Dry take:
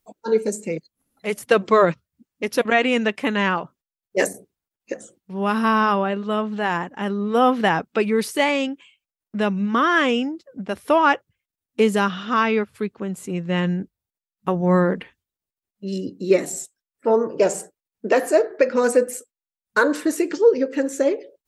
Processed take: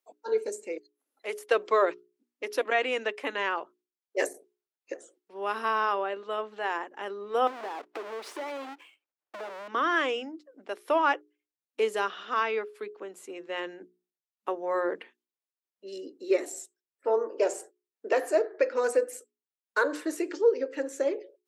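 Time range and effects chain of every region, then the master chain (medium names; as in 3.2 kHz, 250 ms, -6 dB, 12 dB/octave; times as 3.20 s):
7.47–9.68 s: square wave that keeps the level + overdrive pedal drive 14 dB, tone 1.2 kHz, clips at -5.5 dBFS + compression 8:1, threshold -25 dBFS
whole clip: steep high-pass 310 Hz 36 dB/octave; treble shelf 6.9 kHz -4.5 dB; hum notches 60/120/180/240/300/360/420 Hz; trim -7.5 dB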